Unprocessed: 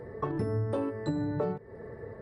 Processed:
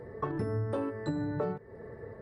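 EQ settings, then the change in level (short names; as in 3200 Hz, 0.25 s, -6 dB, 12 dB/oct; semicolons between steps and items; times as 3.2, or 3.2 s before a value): dynamic EQ 1500 Hz, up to +4 dB, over -53 dBFS, Q 1.8; -2.0 dB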